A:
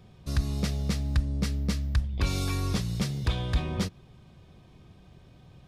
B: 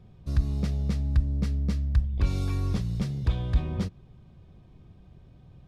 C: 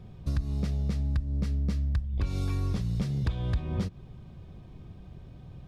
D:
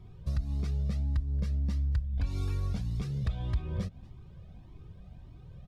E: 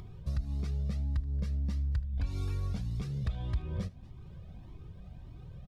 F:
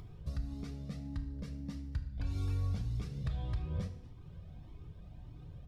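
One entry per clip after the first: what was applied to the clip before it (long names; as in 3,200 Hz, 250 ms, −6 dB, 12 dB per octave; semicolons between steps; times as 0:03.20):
spectral tilt −2 dB per octave; level −5 dB
downward compressor, threshold −31 dBFS, peak gain reduction 13.5 dB; level +5.5 dB
single-tap delay 231 ms −23 dB; flanger whose copies keep moving one way rising 1.7 Hz
upward compression, threshold −38 dBFS; single-tap delay 77 ms −22.5 dB; level −2 dB
feedback delay network reverb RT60 0.81 s, low-frequency decay 1.25×, high-frequency decay 0.9×, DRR 6.5 dB; level −3.5 dB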